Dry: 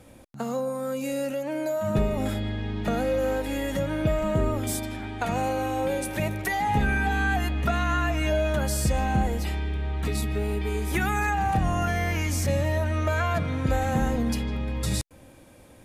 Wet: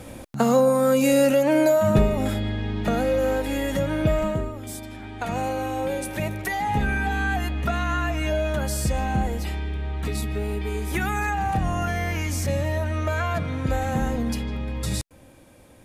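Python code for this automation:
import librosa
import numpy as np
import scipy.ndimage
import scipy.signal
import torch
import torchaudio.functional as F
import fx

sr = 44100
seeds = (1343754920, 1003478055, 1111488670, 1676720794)

y = fx.gain(x, sr, db=fx.line((1.61, 11.0), (2.17, 3.0), (4.23, 3.0), (4.53, -8.0), (5.37, 0.0)))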